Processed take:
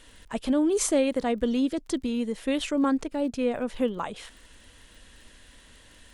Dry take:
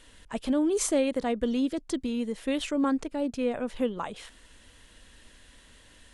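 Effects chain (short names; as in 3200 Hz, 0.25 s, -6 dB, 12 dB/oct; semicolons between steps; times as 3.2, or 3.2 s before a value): crackle 32/s -47 dBFS; gain +2 dB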